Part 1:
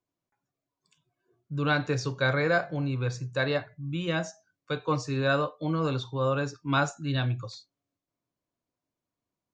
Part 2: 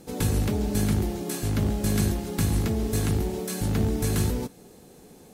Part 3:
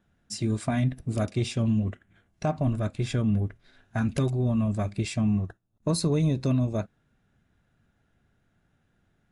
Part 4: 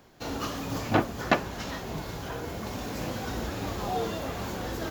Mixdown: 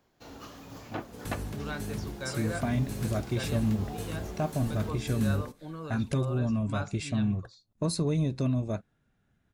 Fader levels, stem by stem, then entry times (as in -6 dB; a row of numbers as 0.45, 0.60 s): -12.5, -13.0, -3.5, -13.0 dB; 0.00, 1.05, 1.95, 0.00 s